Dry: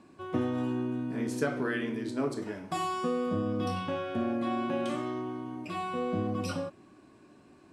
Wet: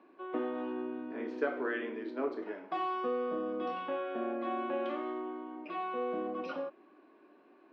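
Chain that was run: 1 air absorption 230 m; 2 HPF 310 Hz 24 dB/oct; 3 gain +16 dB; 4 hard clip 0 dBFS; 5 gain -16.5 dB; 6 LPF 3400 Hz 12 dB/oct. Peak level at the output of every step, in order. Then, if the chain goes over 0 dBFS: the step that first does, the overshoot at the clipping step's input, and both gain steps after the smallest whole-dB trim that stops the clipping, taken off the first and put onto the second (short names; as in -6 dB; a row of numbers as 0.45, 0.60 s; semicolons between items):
-16.5, -17.5, -1.5, -1.5, -18.0, -18.0 dBFS; no overload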